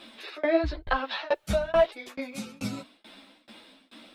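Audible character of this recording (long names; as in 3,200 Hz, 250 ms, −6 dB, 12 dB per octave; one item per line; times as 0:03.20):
a quantiser's noise floor 12 bits, dither none
tremolo saw down 2.3 Hz, depth 100%
a shimmering, thickened sound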